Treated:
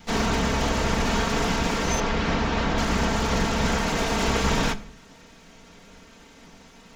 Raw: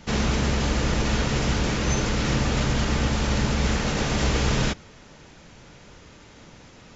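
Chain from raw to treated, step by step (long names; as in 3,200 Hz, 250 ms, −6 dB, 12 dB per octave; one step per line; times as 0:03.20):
lower of the sound and its delayed copy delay 4.4 ms
on a send at −10.5 dB: convolution reverb RT60 0.40 s, pre-delay 3 ms
on the sum: dynamic equaliser 940 Hz, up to +5 dB, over −43 dBFS, Q 0.83
0:02.00–0:02.78: low-pass filter 4,300 Hz 12 dB per octave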